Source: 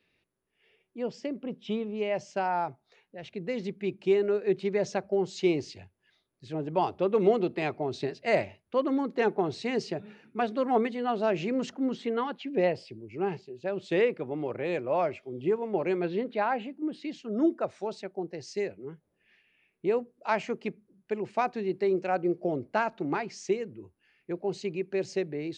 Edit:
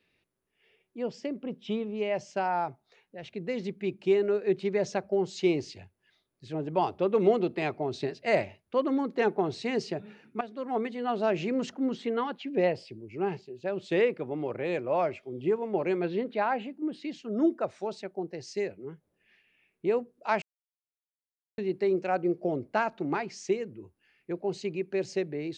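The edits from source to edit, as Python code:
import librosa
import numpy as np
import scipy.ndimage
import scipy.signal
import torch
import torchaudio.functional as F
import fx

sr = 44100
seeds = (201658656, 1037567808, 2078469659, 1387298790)

y = fx.edit(x, sr, fx.fade_in_from(start_s=10.41, length_s=0.78, floor_db=-14.0),
    fx.silence(start_s=20.42, length_s=1.16), tone=tone)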